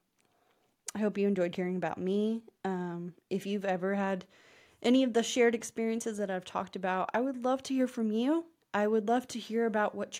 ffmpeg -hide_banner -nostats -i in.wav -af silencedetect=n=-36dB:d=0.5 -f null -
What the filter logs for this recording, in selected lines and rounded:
silence_start: 0.00
silence_end: 0.88 | silence_duration: 0.88
silence_start: 4.21
silence_end: 4.83 | silence_duration: 0.61